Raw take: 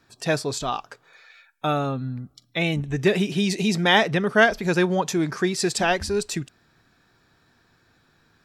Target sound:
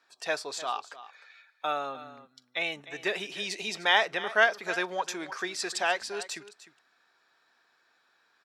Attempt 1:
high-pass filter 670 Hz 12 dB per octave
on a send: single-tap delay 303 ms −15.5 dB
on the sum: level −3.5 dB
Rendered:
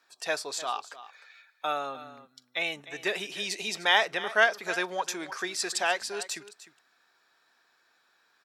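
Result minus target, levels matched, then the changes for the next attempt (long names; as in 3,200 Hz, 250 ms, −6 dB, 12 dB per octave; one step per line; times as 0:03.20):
8,000 Hz band +3.0 dB
add after high-pass filter: high-shelf EQ 8,800 Hz −10.5 dB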